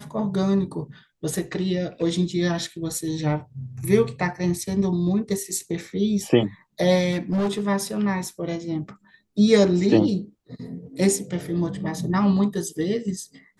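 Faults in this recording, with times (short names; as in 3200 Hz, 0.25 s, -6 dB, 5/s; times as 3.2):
7.11–7.61 clipped -19.5 dBFS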